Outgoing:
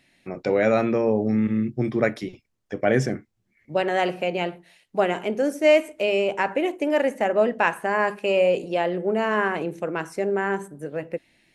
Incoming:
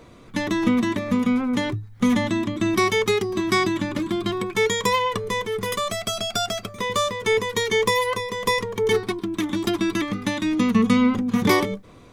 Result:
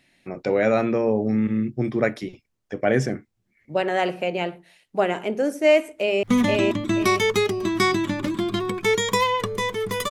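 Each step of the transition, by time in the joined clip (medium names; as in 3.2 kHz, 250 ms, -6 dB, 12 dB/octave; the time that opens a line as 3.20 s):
outgoing
5.91–6.23 s: echo throw 480 ms, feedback 25%, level -1 dB
6.23 s: go over to incoming from 1.95 s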